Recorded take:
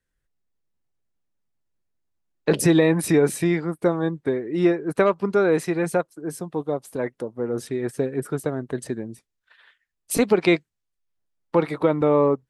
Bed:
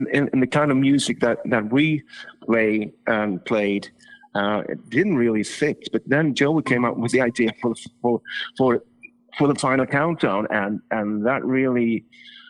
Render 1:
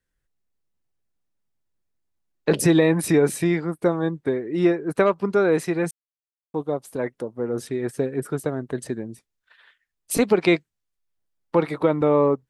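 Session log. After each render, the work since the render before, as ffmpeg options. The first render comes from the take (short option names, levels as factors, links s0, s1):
-filter_complex "[0:a]asplit=3[s0][s1][s2];[s0]atrim=end=5.91,asetpts=PTS-STARTPTS,afade=t=out:st=5.906:d=0.004:c=hsin[s3];[s1]atrim=start=5.91:end=6.54,asetpts=PTS-STARTPTS,volume=0[s4];[s2]atrim=start=6.54,asetpts=PTS-STARTPTS,afade=t=in:d=0.004:c=hsin[s5];[s3][s4][s5]concat=n=3:v=0:a=1"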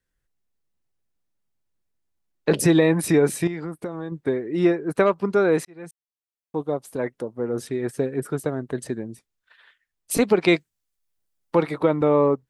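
-filter_complex "[0:a]asettb=1/sr,asplit=3[s0][s1][s2];[s0]atrim=end=3.474[s3];[s1]atrim=start=3.47:end=4.12,asetpts=PTS-STARTPTS,afade=t=in:d=0.004:c=qsin,afade=t=out:st=0.646:d=0.004:c=qsin,acompressor=threshold=0.0501:ratio=8:attack=3.2:release=140:knee=1:detection=peak[s4];[s2]atrim=start=4.116[s5];[s3][s4]acrossfade=d=0.004:c1=hsin:c2=qsin[s6];[s6][s5]acrossfade=d=0.004:c1=qsin:c2=hsin,asettb=1/sr,asplit=3[s7][s8][s9];[s7]atrim=end=10.484[s10];[s8]atrim=start=10.48:end=11.63,asetpts=PTS-STARTPTS,afade=t=in:d=0.004:c=qsin,afade=t=out:st=1.146:d=0.004:c=qsin,highshelf=f=5000:g=7.5[s11];[s9]atrim=start=11.626[s12];[s10][s11]acrossfade=d=0.004:c1=hsin:c2=qsin[s13];[s13][s12]acrossfade=d=0.004:c1=qsin:c2=hsin,asplit=2[s14][s15];[s14]atrim=end=5.65,asetpts=PTS-STARTPTS,afade=t=out:st=5.646:d=0.004:c=hsin[s16];[s15]atrim=start=5.65,asetpts=PTS-STARTPTS,afade=t=in:d=0.92[s17];[s16][s17]concat=n=2:v=0:a=1"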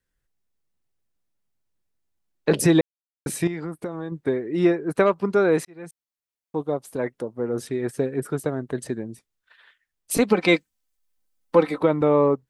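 -filter_complex "[0:a]asettb=1/sr,asplit=3[s0][s1][s2];[s0]atrim=end=10.304[s3];[s1]atrim=start=10.3:end=11.81,asetpts=PTS-STARTPTS,afade=t=in:d=0.004:c=qsin,afade=t=out:st=1.506:d=0.004:c=qsin,aecho=1:1:3.9:0.65,atrim=end_sample=66591[s4];[s2]atrim=start=11.806[s5];[s3][s4]acrossfade=d=0.004:c1=hsin:c2=qsin[s6];[s6][s5]acrossfade=d=0.004:c1=qsin:c2=hsin,asplit=3[s7][s8][s9];[s7]atrim=end=2.81,asetpts=PTS-STARTPTS,afade=t=out:st=2.806:d=0.004:c=hsin[s10];[s8]atrim=start=2.81:end=3.26,asetpts=PTS-STARTPTS,volume=0[s11];[s9]atrim=start=3.26,asetpts=PTS-STARTPTS,afade=t=in:d=0.004:c=hsin[s12];[s10][s11][s12]concat=n=3:v=0:a=1"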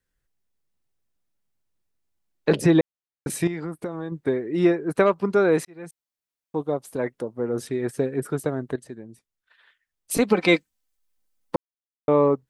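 -filter_complex "[0:a]asettb=1/sr,asplit=3[s0][s1][s2];[s0]atrim=end=2.564[s3];[s1]atrim=start=2.56:end=3.3,asetpts=PTS-STARTPTS,afade=t=in:d=0.004:c=qsin,afade=t=out:st=0.736:d=0.004:c=qsin,lowpass=f=2700:p=1[s4];[s2]atrim=start=3.296[s5];[s3][s4]acrossfade=d=0.004:c1=hsin:c2=qsin[s6];[s6][s5]acrossfade=d=0.004:c1=qsin:c2=hsin,asplit=4[s7][s8][s9][s10];[s7]atrim=end=8.76,asetpts=PTS-STARTPTS,afade=t=out:st=8.756:d=0.004:c=hsin:silence=0.251189[s11];[s8]atrim=start=8.76:end=11.56,asetpts=PTS-STARTPTS,afade=t=in:d=1.69:silence=0.251189,afade=t=out:st=2.796:d=0.004:c=hsin[s12];[s9]atrim=start=11.56:end=12.08,asetpts=PTS-STARTPTS,volume=0[s13];[s10]atrim=start=12.08,asetpts=PTS-STARTPTS,afade=t=in:d=0.004:c=hsin[s14];[s11][s12][s13][s14]concat=n=4:v=0:a=1"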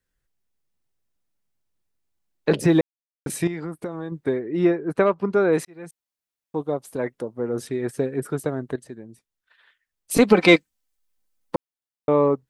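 -filter_complex "[0:a]asettb=1/sr,asplit=3[s0][s1][s2];[s0]atrim=end=2.634[s3];[s1]atrim=start=2.63:end=3.29,asetpts=PTS-STARTPTS,afade=t=in:d=0.004:c=qsin,afade=t=out:st=0.656:d=0.004:c=qsin,aeval=exprs='sgn(val(0))*max(abs(val(0))-0.00531,0)':c=same[s4];[s2]atrim=start=3.286[s5];[s3][s4]acrossfade=d=0.004:c1=hsin:c2=qsin[s6];[s6][s5]acrossfade=d=0.004:c1=qsin:c2=hsin,asettb=1/sr,asplit=3[s7][s8][s9];[s7]atrim=end=4.394[s10];[s8]atrim=start=4.39:end=5.53,asetpts=PTS-STARTPTS,afade=t=in:d=0.004:c=qsin,afade=t=out:st=1.136:d=0.004:c=qsin,highshelf=f=4400:g=-10.5[s11];[s9]atrim=start=5.526[s12];[s10][s11]acrossfade=d=0.004:c1=hsin:c2=qsin[s13];[s13][s12]acrossfade=d=0.004:c1=qsin:c2=hsin,asettb=1/sr,asplit=3[s14][s15][s16];[s14]atrim=end=10.164[s17];[s15]atrim=start=10.16:end=10.56,asetpts=PTS-STARTPTS,afade=t=in:d=0.004:c=qsin,afade=t=out:st=0.396:d=0.004:c=qsin,acontrast=38[s18];[s16]atrim=start=10.556[s19];[s17][s18]acrossfade=d=0.004:c1=hsin:c2=qsin[s20];[s20][s19]acrossfade=d=0.004:c1=qsin:c2=hsin"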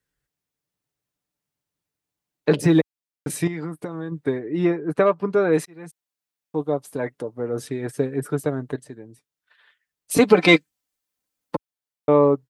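-af "highpass=56,aecho=1:1:6.8:0.39"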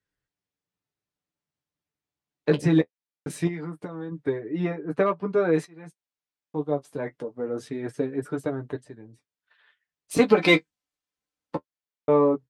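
-af "flanger=delay=9.9:depth=3.9:regen=-27:speed=0.23:shape=sinusoidal,adynamicsmooth=sensitivity=3:basefreq=7400"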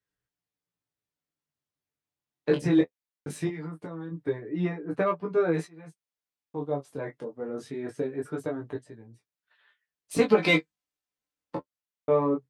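-af "flanger=delay=16.5:depth=5.7:speed=0.21"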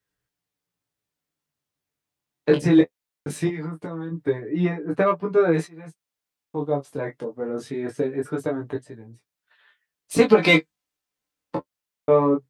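-af "volume=2,alimiter=limit=0.708:level=0:latency=1"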